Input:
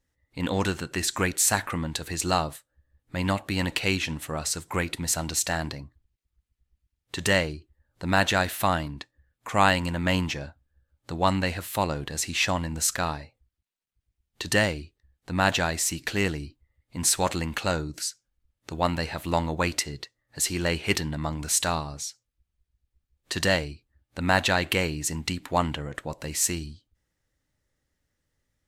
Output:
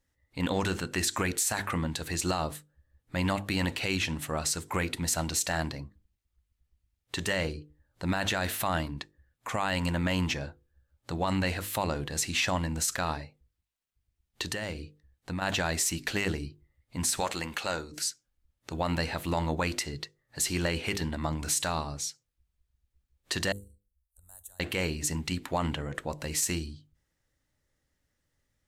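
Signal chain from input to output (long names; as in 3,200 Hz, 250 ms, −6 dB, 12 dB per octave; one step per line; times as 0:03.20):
0:17.20–0:17.94: low-shelf EQ 280 Hz −12 dB
0:23.52–0:24.60: inverse Chebyshev band-stop filter 100–5,300 Hz, stop band 40 dB
mains-hum notches 50/100/150/200/250/300/350/400/450/500 Hz
brickwall limiter −17.5 dBFS, peak gain reduction 11.5 dB
0:14.42–0:15.42: downward compressor, threshold −31 dBFS, peak gain reduction 7 dB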